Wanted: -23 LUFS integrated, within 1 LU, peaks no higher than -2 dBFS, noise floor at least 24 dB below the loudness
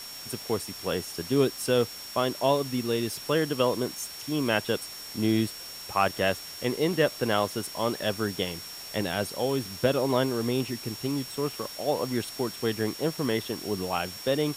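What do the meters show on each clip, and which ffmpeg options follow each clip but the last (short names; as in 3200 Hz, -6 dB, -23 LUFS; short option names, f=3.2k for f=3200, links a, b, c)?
steady tone 5500 Hz; tone level -41 dBFS; noise floor -41 dBFS; noise floor target -53 dBFS; loudness -28.5 LUFS; peak -9.5 dBFS; loudness target -23.0 LUFS
-> -af "bandreject=f=5.5k:w=30"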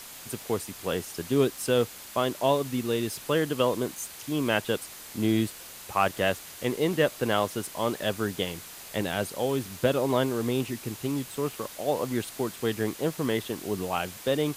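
steady tone none; noise floor -44 dBFS; noise floor target -53 dBFS
-> -af "afftdn=nr=9:nf=-44"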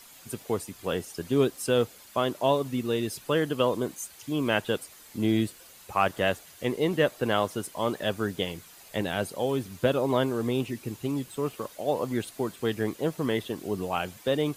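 noise floor -51 dBFS; noise floor target -53 dBFS
-> -af "afftdn=nr=6:nf=-51"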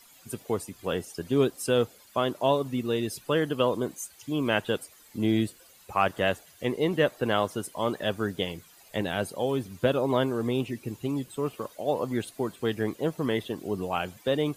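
noise floor -55 dBFS; loudness -29.0 LUFS; peak -9.5 dBFS; loudness target -23.0 LUFS
-> -af "volume=6dB"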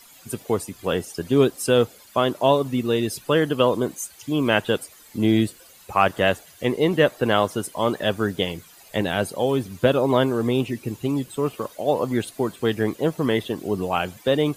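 loudness -23.0 LUFS; peak -3.5 dBFS; noise floor -49 dBFS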